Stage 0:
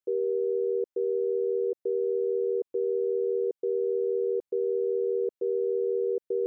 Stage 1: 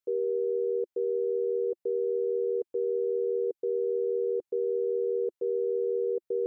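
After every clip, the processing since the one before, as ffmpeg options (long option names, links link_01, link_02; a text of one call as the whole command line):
ffmpeg -i in.wav -af "equalizer=frequency=350:width=6.7:gain=-6.5" out.wav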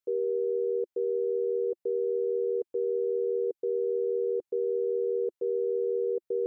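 ffmpeg -i in.wav -af anull out.wav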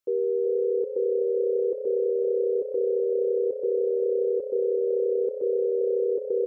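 ffmpeg -i in.wav -filter_complex "[0:a]asplit=6[link_01][link_02][link_03][link_04][link_05][link_06];[link_02]adelay=379,afreqshift=32,volume=-9dB[link_07];[link_03]adelay=758,afreqshift=64,volume=-15.9dB[link_08];[link_04]adelay=1137,afreqshift=96,volume=-22.9dB[link_09];[link_05]adelay=1516,afreqshift=128,volume=-29.8dB[link_10];[link_06]adelay=1895,afreqshift=160,volume=-36.7dB[link_11];[link_01][link_07][link_08][link_09][link_10][link_11]amix=inputs=6:normalize=0,volume=3.5dB" out.wav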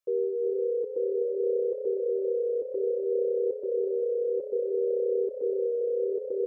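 ffmpeg -i in.wav -af "flanger=delay=1.7:depth=4.8:regen=-22:speed=0.6:shape=sinusoidal" out.wav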